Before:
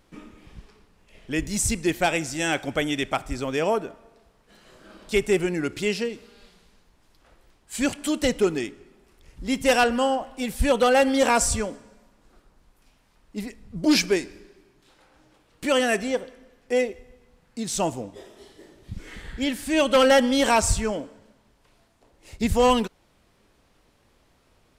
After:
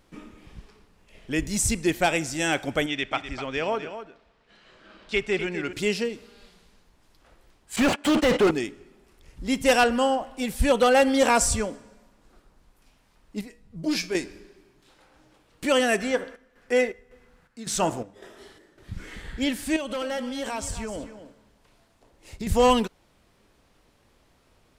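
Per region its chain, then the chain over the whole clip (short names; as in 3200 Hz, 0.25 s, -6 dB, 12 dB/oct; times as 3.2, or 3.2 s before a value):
2.86–5.73 LPF 3100 Hz + tilt shelf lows -6 dB, about 1500 Hz + echo 0.251 s -10.5 dB
7.76–8.51 gate -35 dBFS, range -29 dB + high shelf 11000 Hz -9 dB + overdrive pedal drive 36 dB, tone 1500 Hz, clips at -12.5 dBFS
13.41–14.15 notch 880 Hz, Q 21 + resonator 160 Hz, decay 0.24 s, mix 70%
16–19.06 bell 1500 Hz +9 dB 0.87 oct + de-hum 67.81 Hz, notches 30 + chopper 1.8 Hz, depth 65%, duty 65%
19.76–22.47 compressor, threshold -29 dBFS + echo 0.254 s -12 dB
whole clip: dry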